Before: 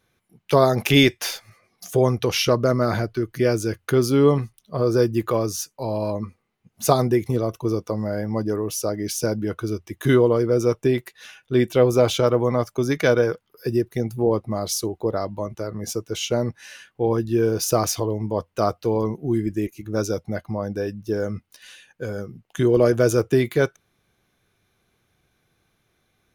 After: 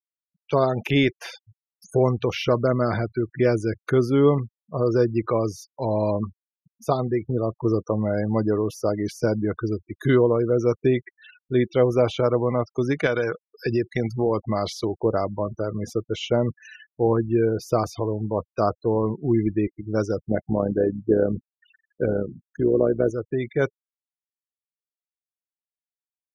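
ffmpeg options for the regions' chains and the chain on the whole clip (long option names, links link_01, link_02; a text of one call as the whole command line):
ffmpeg -i in.wav -filter_complex "[0:a]asettb=1/sr,asplit=3[link_01][link_02][link_03];[link_01]atrim=end=13.064[link_04];[link_02]atrim=start=13.06:end=14.92,asetpts=PTS-STARTPTS,afade=type=in:duration=0.004:curve=qsin,afade=type=out:start_time=1.856:duration=0.004:curve=qsin,equalizer=frequency=3100:width=0.41:gain=10,acompressor=threshold=-21dB:ratio=2.5:attack=3.2:release=140:knee=1:detection=peak[link_05];[link_03]atrim=start=14.916[link_06];[link_04][link_05]acrossfade=duration=0.004:curve1=hsin:curve2=qsin[link_07];[link_07][link_06]acrossfade=duration=0.004:curve1=qsin:curve2=hsin,asettb=1/sr,asplit=3[link_08][link_09][link_10];[link_08]atrim=end=20.304[link_11];[link_09]atrim=start=20.3:end=23.11,asetpts=PTS-STARTPTS,afade=type=in:duration=0.004:curve=qsin,afade=type=out:start_time=2.806:duration=0.004:curve=qsin,equalizer=frequency=330:width=0.45:gain=10,tremolo=f=67:d=0.571[link_12];[link_10]atrim=start=23.106[link_13];[link_11][link_12]acrossfade=duration=0.004:curve1=hsin:curve2=qsin[link_14];[link_14][link_13]acrossfade=duration=0.004:curve1=qsin:curve2=hsin,dynaudnorm=framelen=120:gausssize=7:maxgain=9dB,afftfilt=real='re*gte(hypot(re,im),0.0447)':imag='im*gte(hypot(re,im),0.0447)':win_size=1024:overlap=0.75,acrossover=split=3200[link_15][link_16];[link_16]acompressor=threshold=-38dB:ratio=4:attack=1:release=60[link_17];[link_15][link_17]amix=inputs=2:normalize=0,volume=-6dB" out.wav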